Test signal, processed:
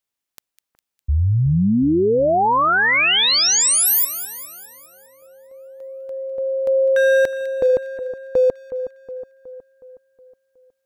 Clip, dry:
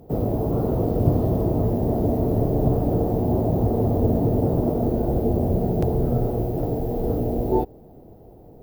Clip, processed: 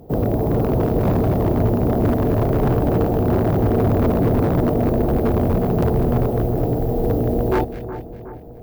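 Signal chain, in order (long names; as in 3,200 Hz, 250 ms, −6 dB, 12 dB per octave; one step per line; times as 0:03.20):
wave folding −15.5 dBFS
echo with a time of its own for lows and highs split 1,700 Hz, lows 367 ms, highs 203 ms, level −12 dB
level +4 dB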